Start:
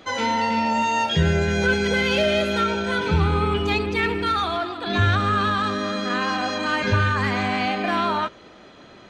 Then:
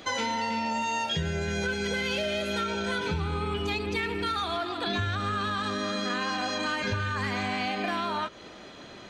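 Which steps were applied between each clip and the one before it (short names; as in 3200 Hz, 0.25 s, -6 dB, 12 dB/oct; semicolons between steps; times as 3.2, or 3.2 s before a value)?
high shelf 3900 Hz +7 dB; notch 1300 Hz, Q 30; compressor 6:1, threshold -27 dBFS, peak gain reduction 12.5 dB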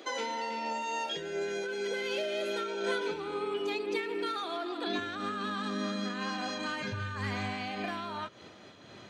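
low shelf 72 Hz -6.5 dB; high-pass sweep 360 Hz -> 98 Hz, 4.55–7.4; noise-modulated level, depth 60%; gain -2.5 dB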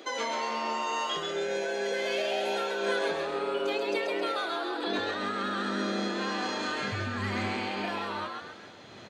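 frequency-shifting echo 0.134 s, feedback 44%, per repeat +140 Hz, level -3.5 dB; gain +1.5 dB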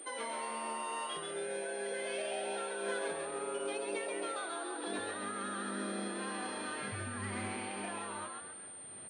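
pulse-width modulation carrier 8900 Hz; gain -8 dB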